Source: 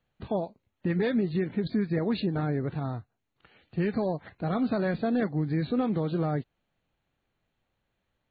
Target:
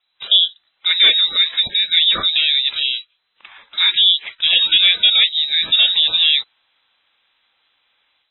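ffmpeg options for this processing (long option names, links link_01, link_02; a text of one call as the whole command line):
ffmpeg -i in.wav -filter_complex "[0:a]acrossover=split=350[link_01][link_02];[link_01]asoftclip=type=tanh:threshold=-29.5dB[link_03];[link_02]dynaudnorm=framelen=130:gausssize=3:maxgain=12dB[link_04];[link_03][link_04]amix=inputs=2:normalize=0,lowpass=frequency=3400:width_type=q:width=0.5098,lowpass=frequency=3400:width_type=q:width=0.6013,lowpass=frequency=3400:width_type=q:width=0.9,lowpass=frequency=3400:width_type=q:width=2.563,afreqshift=-4000,volume=6.5dB" out.wav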